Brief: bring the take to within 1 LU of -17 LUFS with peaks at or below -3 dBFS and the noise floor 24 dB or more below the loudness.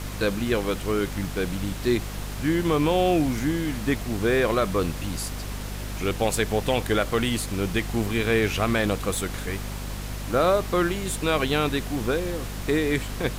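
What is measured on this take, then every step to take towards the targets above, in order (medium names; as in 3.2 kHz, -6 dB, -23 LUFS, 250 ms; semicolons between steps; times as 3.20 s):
hum 50 Hz; highest harmonic 250 Hz; hum level -31 dBFS; noise floor -34 dBFS; noise floor target -50 dBFS; loudness -25.5 LUFS; peak level -9.5 dBFS; loudness target -17.0 LUFS
-> hum notches 50/100/150/200/250 Hz; noise print and reduce 16 dB; trim +8.5 dB; peak limiter -3 dBFS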